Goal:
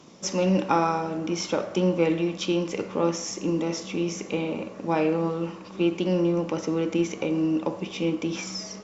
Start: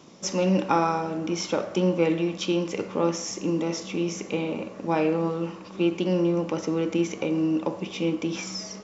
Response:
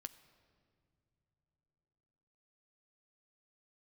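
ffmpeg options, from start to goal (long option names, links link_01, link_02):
-ar 48000 -c:a libopus -b:a 64k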